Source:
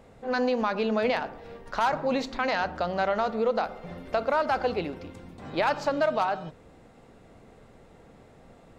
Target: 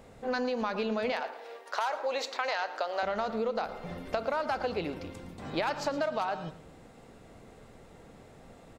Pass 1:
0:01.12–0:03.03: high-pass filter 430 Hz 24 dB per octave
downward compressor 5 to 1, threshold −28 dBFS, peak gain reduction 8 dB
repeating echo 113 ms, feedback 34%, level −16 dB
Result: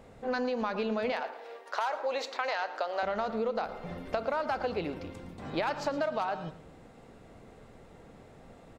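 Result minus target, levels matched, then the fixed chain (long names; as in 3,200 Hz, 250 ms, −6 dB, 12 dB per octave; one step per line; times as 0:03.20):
8,000 Hz band −3.5 dB
0:01.12–0:03.03: high-pass filter 430 Hz 24 dB per octave
downward compressor 5 to 1, threshold −28 dBFS, peak gain reduction 8 dB
high-shelf EQ 4,200 Hz +5.5 dB
repeating echo 113 ms, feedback 34%, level −16 dB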